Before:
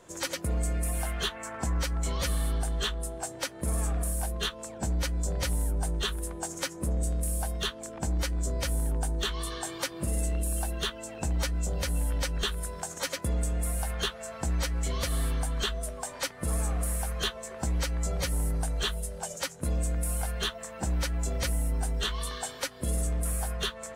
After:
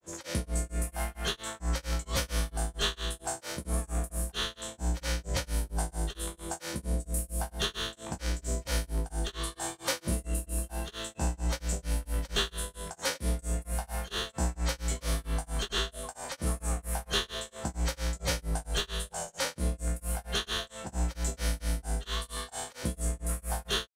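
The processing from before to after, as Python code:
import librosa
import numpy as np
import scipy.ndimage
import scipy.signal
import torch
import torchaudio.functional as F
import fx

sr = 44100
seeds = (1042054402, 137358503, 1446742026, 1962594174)

y = fx.spec_trails(x, sr, decay_s=0.76)
y = fx.granulator(y, sr, seeds[0], grain_ms=240.0, per_s=4.4, spray_ms=100.0, spread_st=0)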